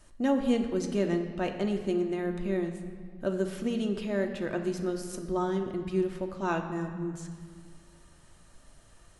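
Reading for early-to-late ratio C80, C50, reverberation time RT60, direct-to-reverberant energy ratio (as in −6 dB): 9.0 dB, 7.5 dB, 1.9 s, 3.0 dB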